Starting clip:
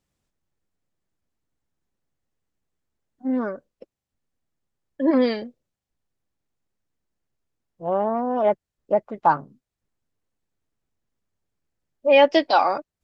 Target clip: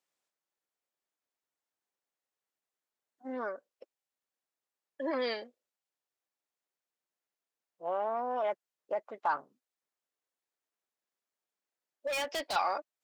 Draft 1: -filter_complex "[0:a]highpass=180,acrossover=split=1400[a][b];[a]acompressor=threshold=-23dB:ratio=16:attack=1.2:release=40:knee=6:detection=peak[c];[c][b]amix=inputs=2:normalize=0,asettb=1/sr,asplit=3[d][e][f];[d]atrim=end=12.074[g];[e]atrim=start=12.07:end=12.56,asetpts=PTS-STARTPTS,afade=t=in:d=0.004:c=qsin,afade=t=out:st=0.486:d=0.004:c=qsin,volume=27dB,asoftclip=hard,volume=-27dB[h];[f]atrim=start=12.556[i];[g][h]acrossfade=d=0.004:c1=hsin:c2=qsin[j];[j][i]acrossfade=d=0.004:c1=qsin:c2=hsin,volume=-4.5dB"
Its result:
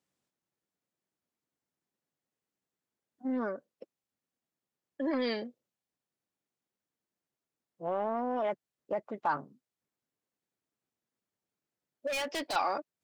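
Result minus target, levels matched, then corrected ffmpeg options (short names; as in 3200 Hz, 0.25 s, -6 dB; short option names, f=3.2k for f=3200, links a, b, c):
250 Hz band +7.5 dB
-filter_complex "[0:a]highpass=550,acrossover=split=1400[a][b];[a]acompressor=threshold=-23dB:ratio=16:attack=1.2:release=40:knee=6:detection=peak[c];[c][b]amix=inputs=2:normalize=0,asettb=1/sr,asplit=3[d][e][f];[d]atrim=end=12.074[g];[e]atrim=start=12.07:end=12.56,asetpts=PTS-STARTPTS,afade=t=in:d=0.004:c=qsin,afade=t=out:st=0.486:d=0.004:c=qsin,volume=27dB,asoftclip=hard,volume=-27dB[h];[f]atrim=start=12.556[i];[g][h]acrossfade=d=0.004:c1=hsin:c2=qsin[j];[j][i]acrossfade=d=0.004:c1=qsin:c2=hsin,volume=-4.5dB"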